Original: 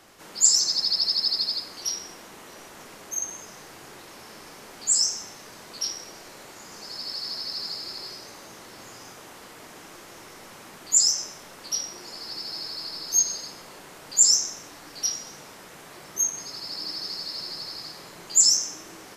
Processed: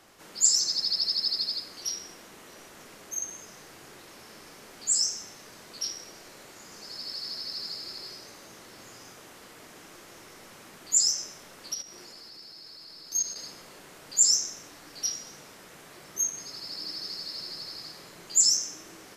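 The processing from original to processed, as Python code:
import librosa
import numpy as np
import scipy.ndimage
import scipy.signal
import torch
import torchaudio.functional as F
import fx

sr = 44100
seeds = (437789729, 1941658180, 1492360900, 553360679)

y = fx.dynamic_eq(x, sr, hz=900.0, q=1.9, threshold_db=-52.0, ratio=4.0, max_db=-5)
y = fx.level_steps(y, sr, step_db=11, at=(11.74, 13.36))
y = F.gain(torch.from_numpy(y), -3.5).numpy()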